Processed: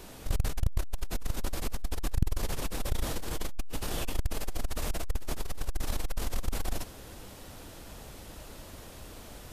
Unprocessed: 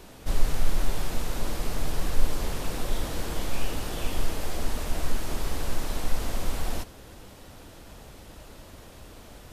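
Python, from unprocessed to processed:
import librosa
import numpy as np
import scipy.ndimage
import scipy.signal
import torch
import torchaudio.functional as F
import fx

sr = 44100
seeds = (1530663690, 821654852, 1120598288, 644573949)

y = fx.high_shelf(x, sr, hz=5800.0, db=4.5)
y = fx.transformer_sat(y, sr, knee_hz=140.0)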